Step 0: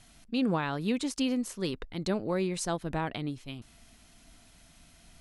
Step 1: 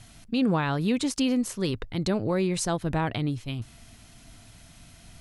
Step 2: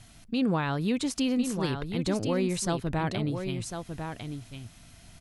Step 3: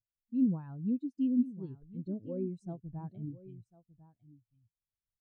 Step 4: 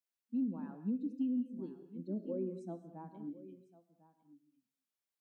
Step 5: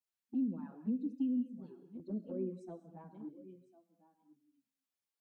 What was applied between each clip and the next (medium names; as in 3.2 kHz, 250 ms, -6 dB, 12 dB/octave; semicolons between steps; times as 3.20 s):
peaking EQ 110 Hz +11 dB 0.62 oct; in parallel at -1 dB: peak limiter -25 dBFS, peak gain reduction 9 dB
delay 1050 ms -7 dB; trim -2.5 dB
spectral contrast expander 2.5:1; trim -4.5 dB
steep high-pass 200 Hz 48 dB/octave; gated-style reverb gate 250 ms flat, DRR 9.5 dB; compression 6:1, threshold -33 dBFS, peak gain reduction 9.5 dB; trim +1 dB
touch-sensitive flanger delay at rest 10.9 ms, full sweep at -32.5 dBFS; trim +1 dB